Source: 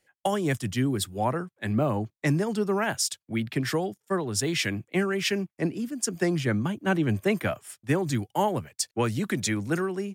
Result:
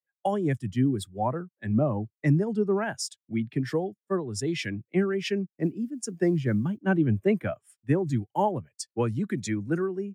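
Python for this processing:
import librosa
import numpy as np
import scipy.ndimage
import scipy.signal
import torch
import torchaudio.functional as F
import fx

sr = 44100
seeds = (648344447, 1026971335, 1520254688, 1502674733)

y = fx.mod_noise(x, sr, seeds[0], snr_db=25, at=(5.47, 6.78))
y = fx.spectral_expand(y, sr, expansion=1.5)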